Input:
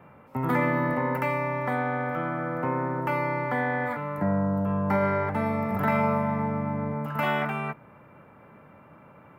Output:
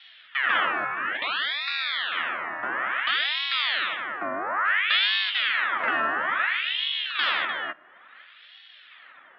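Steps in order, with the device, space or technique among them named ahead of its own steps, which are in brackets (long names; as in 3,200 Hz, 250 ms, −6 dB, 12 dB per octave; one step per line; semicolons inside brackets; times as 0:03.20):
0:00.85–0:02.12: Chebyshev band-pass filter 320–3,300 Hz, order 4
voice changer toy (ring modulator whose carrier an LFO sweeps 1,800 Hz, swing 75%, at 0.58 Hz; loudspeaker in its box 410–4,200 Hz, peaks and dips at 440 Hz −9 dB, 850 Hz −4 dB, 1,300 Hz +7 dB, 1,800 Hz +8 dB, 3,400 Hz +7 dB)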